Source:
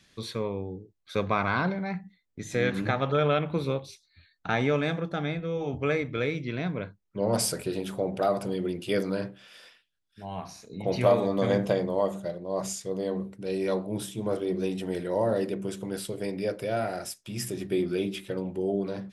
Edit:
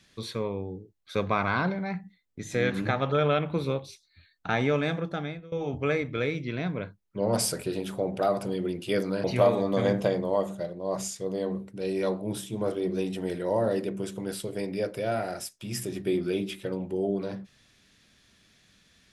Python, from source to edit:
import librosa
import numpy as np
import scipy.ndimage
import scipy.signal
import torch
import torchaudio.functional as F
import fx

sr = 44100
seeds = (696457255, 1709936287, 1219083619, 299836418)

y = fx.edit(x, sr, fx.fade_out_to(start_s=5.1, length_s=0.42, floor_db=-21.0),
    fx.cut(start_s=9.24, length_s=1.65), tone=tone)